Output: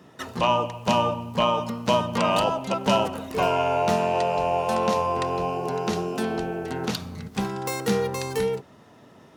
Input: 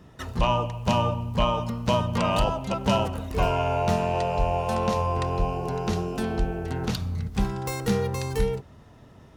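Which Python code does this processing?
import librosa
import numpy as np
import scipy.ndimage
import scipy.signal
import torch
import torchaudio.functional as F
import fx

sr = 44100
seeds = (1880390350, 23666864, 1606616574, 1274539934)

y = scipy.signal.sosfilt(scipy.signal.butter(2, 200.0, 'highpass', fs=sr, output='sos'), x)
y = y * librosa.db_to_amplitude(3.0)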